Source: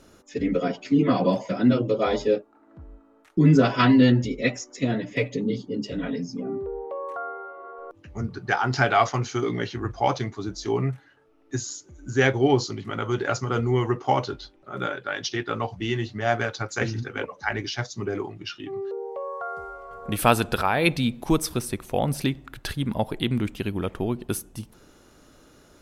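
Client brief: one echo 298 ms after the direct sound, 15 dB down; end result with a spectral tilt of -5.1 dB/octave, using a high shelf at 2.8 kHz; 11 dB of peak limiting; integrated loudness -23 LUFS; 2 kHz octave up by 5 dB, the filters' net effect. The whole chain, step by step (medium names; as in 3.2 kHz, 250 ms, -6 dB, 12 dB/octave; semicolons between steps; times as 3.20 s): peaking EQ 2 kHz +8.5 dB; treble shelf 2.8 kHz -5 dB; peak limiter -12 dBFS; delay 298 ms -15 dB; trim +3.5 dB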